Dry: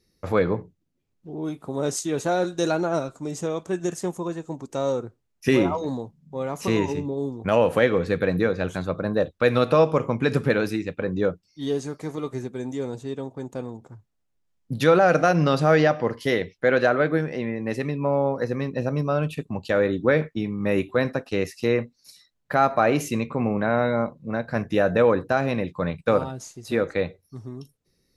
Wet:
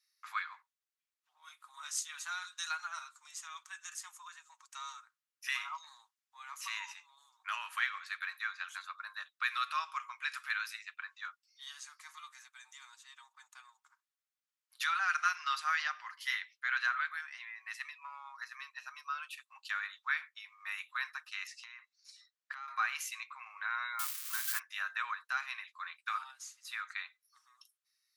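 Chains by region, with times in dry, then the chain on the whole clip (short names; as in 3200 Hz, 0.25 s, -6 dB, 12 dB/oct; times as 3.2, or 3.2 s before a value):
21.47–22.68 LPF 8100 Hz 24 dB/oct + compressor 10:1, threshold -28 dBFS
23.99–24.59 switching spikes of -20 dBFS + high shelf 8300 Hz +6 dB
whole clip: steep high-pass 1100 Hz 48 dB/oct; comb 6.4 ms, depth 32%; gain -6.5 dB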